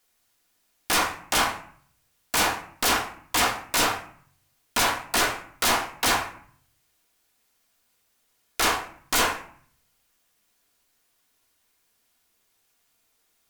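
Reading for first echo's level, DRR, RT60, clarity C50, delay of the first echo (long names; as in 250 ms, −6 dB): no echo audible, 3.0 dB, 0.55 s, 9.5 dB, no echo audible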